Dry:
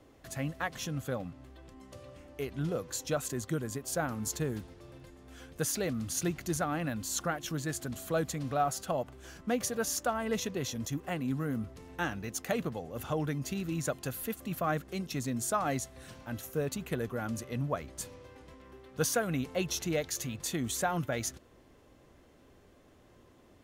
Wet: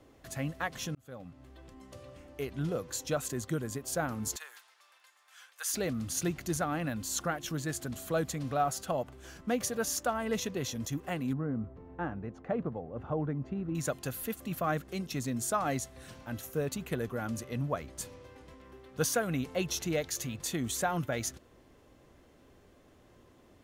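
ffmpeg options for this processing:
-filter_complex "[0:a]asettb=1/sr,asplit=3[a][b][c];[a]atrim=end=4.364[d];[b]atrim=start=4.36:end=5.74,asetpts=PTS-STARTPTS,afade=t=in:d=0.004:c=qsin,afade=t=out:st=1.376:d=0.004:c=qsin,highpass=f=1k:w=0.5412,highpass=f=1k:w=1.3066[e];[c]atrim=start=5.736[f];[d][e]acrossfade=d=0.004:c1=hsin:c2=qsin[g];[g][f]acrossfade=d=0.004:c1=qsin:c2=hsin,asettb=1/sr,asplit=3[h][i][j];[h]atrim=end=11.334[k];[i]atrim=start=11.33:end=13.75,asetpts=PTS-STARTPTS,afade=t=in:d=0.004:c=qsin,afade=t=out:st=2.416:d=0.004:c=qsin,lowpass=1.1k[l];[j]atrim=start=13.746[m];[k][l]acrossfade=d=0.004:c1=hsin:c2=qsin[n];[n][m]acrossfade=d=0.004:c1=qsin:c2=hsin,asplit=2[o][p];[o]atrim=end=0.95,asetpts=PTS-STARTPTS,afade=t=out:st=0.946:d=0.004:c=hsin[q];[p]atrim=start=0.95,asetpts=PTS-STARTPTS,afade=t=in:d=0.65[r];[q][r]concat=n=2:v=0:a=1"

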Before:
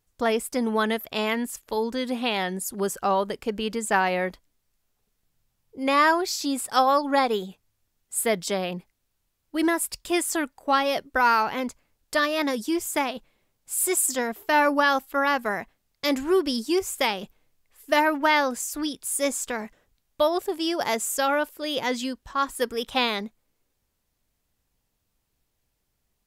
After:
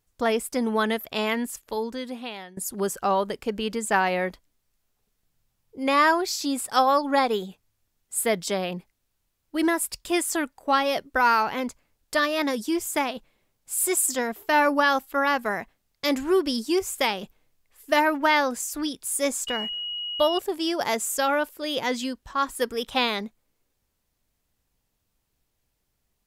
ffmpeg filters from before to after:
-filter_complex "[0:a]asettb=1/sr,asplit=3[a][b][c];[a]atrim=end=19.474[d];[b]atrim=start=19.47:end=20.39,asetpts=PTS-STARTPTS,afade=t=in:d=0.004:c=qsin,afade=t=out:st=0.916:d=0.004:c=qsin,aeval=exprs='val(0)+0.0355*sin(2*PI*2900*n/s)':c=same[e];[c]atrim=start=20.386[f];[d][e]acrossfade=d=0.004:c1=hsin:c2=qsin[g];[g][f]acrossfade=d=0.004:c1=qsin:c2=hsin,asplit=2[h][i];[h]atrim=end=2.57,asetpts=PTS-STARTPTS,afade=t=out:st=1.5:d=1.07:silence=0.0891251[j];[i]atrim=start=2.57,asetpts=PTS-STARTPTS,afade=t=in:d=0.004:c=hsin:silence=0.0891251[k];[j][k]concat=n=2:v=0:a=1"

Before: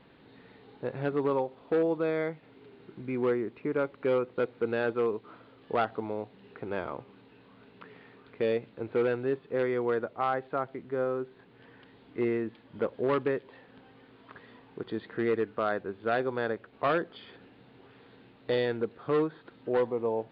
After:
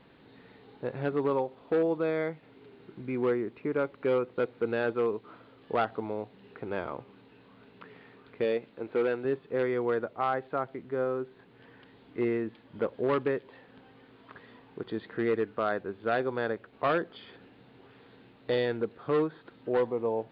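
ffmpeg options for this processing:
-filter_complex "[0:a]asettb=1/sr,asplit=3[a][b][c];[a]atrim=end=8.444[d];[b]atrim=start=8.44:end=9.25,asetpts=PTS-STARTPTS,afade=t=in:d=0.004:c=qsin,afade=t=out:st=0.806:d=0.004:c=qsin,equalizer=f=100:t=o:w=1.2:g=-10.5[e];[c]atrim=start=9.246[f];[d][e]acrossfade=d=0.004:c1=hsin:c2=qsin[g];[g][f]acrossfade=d=0.004:c1=qsin:c2=hsin"

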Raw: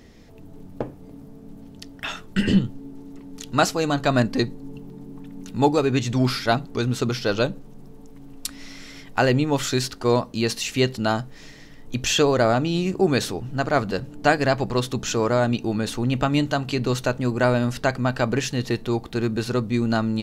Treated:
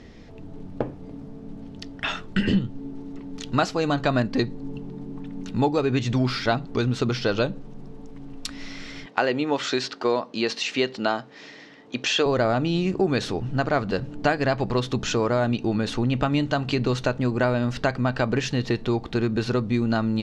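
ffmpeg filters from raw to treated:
-filter_complex "[0:a]asettb=1/sr,asplit=3[a][b][c];[a]atrim=end=9.064[d];[b]atrim=start=9.06:end=12.26,asetpts=PTS-STARTPTS,afade=t=in:d=0.004:c=qsin,afade=t=out:st=3.196:d=0.004:c=qsin,highpass=300,lowpass=6.6k[e];[c]atrim=start=12.256[f];[d][e]acrossfade=d=0.004:c1=hsin:c2=qsin[g];[g][f]acrossfade=d=0.004:c1=qsin:c2=hsin,acompressor=threshold=-24dB:ratio=2.5,lowpass=4.9k,volume=3.5dB"

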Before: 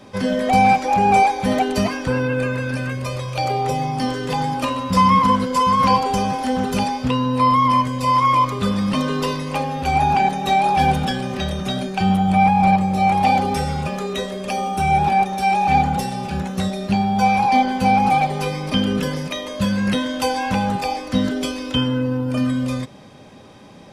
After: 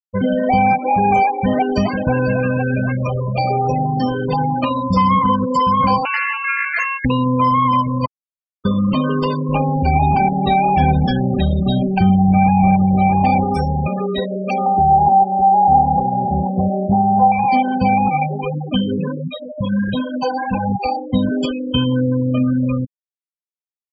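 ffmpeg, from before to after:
-filter_complex "[0:a]asplit=2[a][b];[b]afade=t=in:st=1.31:d=0.01,afade=t=out:st=2.07:d=0.01,aecho=0:1:500|1000|1500|2000|2500|3000|3500|4000|4500:0.398107|0.25877|0.1682|0.10933|0.0710646|0.046192|0.0300248|0.0195161|0.0126855[c];[a][c]amix=inputs=2:normalize=0,asettb=1/sr,asplit=3[d][e][f];[d]atrim=end=6.054[g];[e]atrim=start=6.05:end=7.05,asetpts=PTS-STARTPTS,afade=t=in:d=0.004:c=qsin,afade=t=out:st=0.996:d=0.004:c=qsin,aeval=exprs='val(0)*sin(2*PI*1900*n/s)':c=same[h];[f]atrim=start=7.046[i];[g][h]acrossfade=d=0.004:c1=hsin:c2=qsin[j];[j][i]acrossfade=d=0.004:c1=qsin:c2=hsin,asettb=1/sr,asplit=3[k][l][m];[k]atrim=end=9.494[n];[l]atrim=start=9.49:end=13.44,asetpts=PTS-STARTPTS,afade=t=in:d=0.004:c=qsin,afade=t=out:st=3.946:d=0.004:c=qsin,lowshelf=f=310:g=7[o];[m]atrim=start=13.436[p];[n][o]acrossfade=d=0.004:c1=hsin:c2=qsin[q];[q][p]acrossfade=d=0.004:c1=qsin:c2=hsin,asettb=1/sr,asplit=3[r][s][t];[r]atrim=end=14.664[u];[s]atrim=start=14.66:end=17.32,asetpts=PTS-STARTPTS,afade=t=in:d=0.004:c=qsin,afade=t=out:st=2.656:d=0.004:c=qsin,lowpass=f=810:t=q:w=2.3[v];[t]atrim=start=17.316[w];[u][v]acrossfade=d=0.004:c1=hsin:c2=qsin[x];[x][w]acrossfade=d=0.004:c1=qsin:c2=hsin,asplit=3[y][z][aa];[y]afade=t=out:st=18.09:d=0.02[ab];[z]flanger=delay=0.3:depth=7.4:regen=24:speed=1.4:shape=triangular,afade=t=in:st=18.09:d=0.02,afade=t=out:st=20.83:d=0.02[ac];[aa]afade=t=in:st=20.83:d=0.02[ad];[ab][ac][ad]amix=inputs=3:normalize=0,asplit=3[ae][af][ag];[ae]atrim=end=8.06,asetpts=PTS-STARTPTS,afade=t=out:st=8.056:d=0.004:c=hsin[ah];[af]atrim=start=8.06:end=8.65,asetpts=PTS-STARTPTS,volume=0[ai];[ag]atrim=start=8.65,asetpts=PTS-STARTPTS,afade=t=in:d=0.004:c=hsin[aj];[ah][ai][aj]concat=n=3:v=0:a=1,afftfilt=real='re*gte(hypot(re,im),0.1)':imag='im*gte(hypot(re,im),0.1)':win_size=1024:overlap=0.75,bass=f=250:g=2,treble=f=4k:g=-5,acompressor=threshold=-20dB:ratio=2,volume=5dB"

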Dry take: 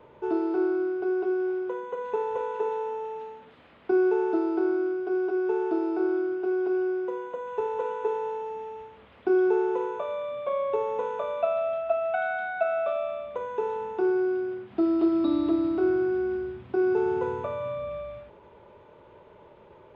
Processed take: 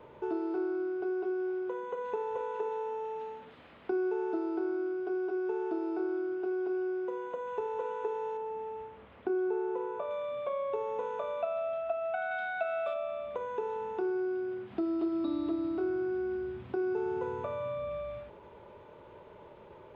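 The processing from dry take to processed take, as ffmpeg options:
-filter_complex "[0:a]asettb=1/sr,asplit=3[a][b][c];[a]atrim=end=8.374[d];[b]atrim=start=8.37:end=10.11,asetpts=PTS-STARTPTS,afade=t=in:d=0.004:c=qsin,afade=t=out:st=1.736:d=0.004:c=qsin,highshelf=f=3.3k:g=-11[e];[c]atrim=start=10.106[f];[d][e]acrossfade=d=0.004:c1=hsin:c2=qsin[g];[g][f]acrossfade=d=0.004:c1=qsin:c2=hsin,asettb=1/sr,asplit=3[h][i][j];[h]atrim=end=12.314[k];[i]atrim=start=12.31:end=12.94,asetpts=PTS-STARTPTS,afade=t=in:d=0.004:c=qsin,afade=t=out:st=0.626:d=0.004:c=qsin,highshelf=f=3k:g=12[l];[j]atrim=start=12.936[m];[k][l]acrossfade=d=0.004:c1=hsin:c2=qsin[n];[n][m]acrossfade=d=0.004:c1=qsin:c2=hsin,acompressor=threshold=-36dB:ratio=2"

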